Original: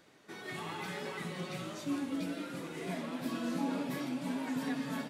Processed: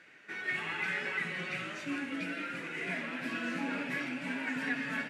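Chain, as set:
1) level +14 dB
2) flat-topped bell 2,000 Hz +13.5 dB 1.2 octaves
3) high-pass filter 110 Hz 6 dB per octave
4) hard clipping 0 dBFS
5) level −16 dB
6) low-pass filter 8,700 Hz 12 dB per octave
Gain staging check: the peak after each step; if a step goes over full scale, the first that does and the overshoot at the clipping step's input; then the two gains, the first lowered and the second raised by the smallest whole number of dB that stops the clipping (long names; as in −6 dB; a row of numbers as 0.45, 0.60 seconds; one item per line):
−9.5, −5.5, −6.0, −6.0, −22.0, −22.0 dBFS
no step passes full scale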